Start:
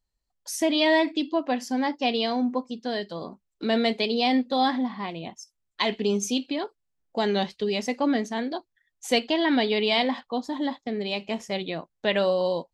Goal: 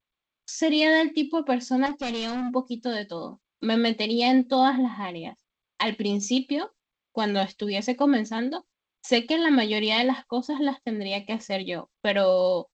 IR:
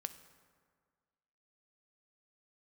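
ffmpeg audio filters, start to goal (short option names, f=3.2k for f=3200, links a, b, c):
-filter_complex "[0:a]asettb=1/sr,asplit=3[a][b][c];[a]atrim=end=4.594[d];[b]atrim=start=4.59:end=5.87,asetpts=PTS-STARTPTS,afade=t=in:d=0.004:c=qsin,afade=t=out:st=1.276:d=0.004:c=qsin,lowpass=f=4.1k:w=0.5412,lowpass=f=4.1k:w=1.3066[e];[c]atrim=start=5.866[f];[d][e]acrossfade=d=0.004:c1=hsin:c2=qsin[g];[g][f]acrossfade=d=0.004:c1=qsin:c2=hsin,agate=range=-55dB:threshold=-45dB:ratio=16:detection=peak,aecho=1:1:3.7:0.43,asettb=1/sr,asplit=3[h][i][j];[h]atrim=end=1.864[k];[i]atrim=start=1.86:end=2.54,asetpts=PTS-STARTPTS,afade=t=in:d=0.004:c=qsin,afade=t=out:st=0.676:d=0.004:c=qsin,asoftclip=type=hard:threshold=-27dB[l];[j]atrim=start=2.536[m];[k][l]acrossfade=d=0.004:c1=hsin:c2=qsin[n];[n][m]acrossfade=d=0.004:c1=qsin:c2=hsin" -ar 16000 -c:a g722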